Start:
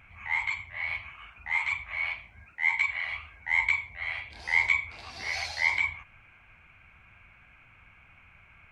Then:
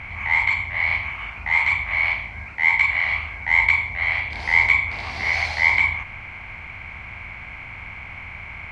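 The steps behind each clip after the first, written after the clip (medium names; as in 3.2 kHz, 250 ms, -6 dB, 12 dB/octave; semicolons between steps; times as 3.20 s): spectral levelling over time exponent 0.6; tone controls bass +6 dB, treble -10 dB; trim +6.5 dB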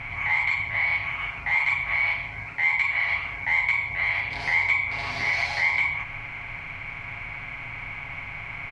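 compression 2:1, threshold -24 dBFS, peak gain reduction 7.5 dB; comb 7.2 ms, depth 82%; trim -1.5 dB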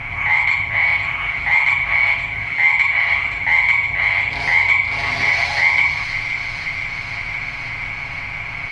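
feedback echo behind a high-pass 520 ms, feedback 75%, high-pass 2.4 kHz, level -6.5 dB; trim +7.5 dB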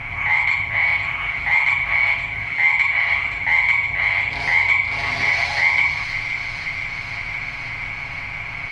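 crackle 45 per s -44 dBFS; trim -2 dB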